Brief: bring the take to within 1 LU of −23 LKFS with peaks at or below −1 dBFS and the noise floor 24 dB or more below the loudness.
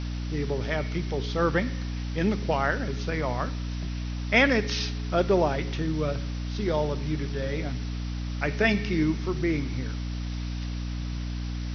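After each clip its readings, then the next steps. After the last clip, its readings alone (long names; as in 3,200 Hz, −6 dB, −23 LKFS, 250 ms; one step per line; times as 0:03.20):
mains hum 60 Hz; hum harmonics up to 300 Hz; level of the hum −29 dBFS; background noise floor −32 dBFS; target noise floor −52 dBFS; integrated loudness −28.0 LKFS; sample peak −7.0 dBFS; target loudness −23.0 LKFS
→ hum removal 60 Hz, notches 5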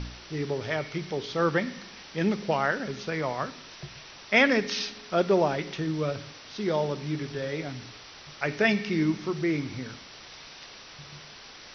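mains hum none found; background noise floor −47 dBFS; target noise floor −52 dBFS
→ broadband denoise 6 dB, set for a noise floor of −47 dBFS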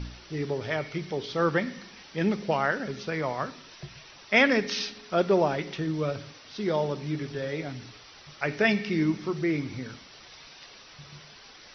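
background noise floor −50 dBFS; target noise floor −52 dBFS
→ broadband denoise 6 dB, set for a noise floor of −50 dBFS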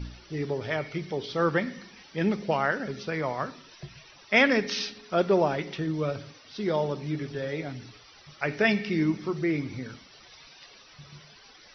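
background noise floor −53 dBFS; integrated loudness −28.0 LKFS; sample peak −7.0 dBFS; target loudness −23.0 LKFS
→ level +5 dB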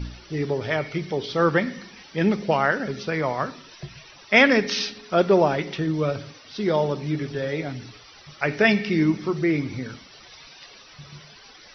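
integrated loudness −23.0 LKFS; sample peak −2.0 dBFS; background noise floor −48 dBFS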